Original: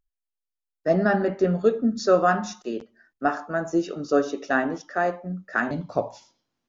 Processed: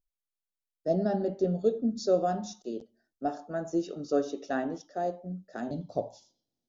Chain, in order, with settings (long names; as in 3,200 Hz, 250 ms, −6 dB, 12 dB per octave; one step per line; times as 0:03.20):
flat-topped bell 1,600 Hz −15.5 dB, from 0:03.50 −8 dB, from 0:04.86 −16 dB
level −6 dB